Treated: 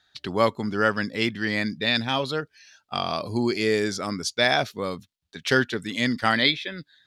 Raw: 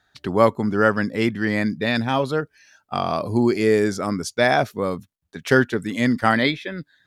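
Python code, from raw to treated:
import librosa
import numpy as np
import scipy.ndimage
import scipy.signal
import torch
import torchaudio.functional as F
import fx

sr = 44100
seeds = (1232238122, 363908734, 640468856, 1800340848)

y = fx.peak_eq(x, sr, hz=3900.0, db=12.0, octaves=1.7)
y = F.gain(torch.from_numpy(y), -6.0).numpy()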